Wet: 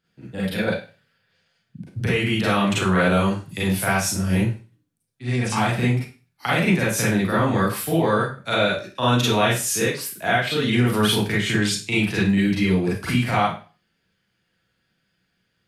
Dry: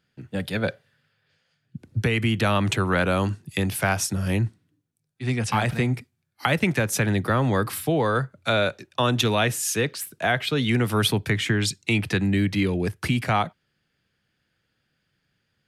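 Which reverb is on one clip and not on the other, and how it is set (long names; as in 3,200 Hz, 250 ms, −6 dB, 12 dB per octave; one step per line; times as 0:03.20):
four-comb reverb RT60 0.35 s, combs from 33 ms, DRR −7.5 dB
level −5.5 dB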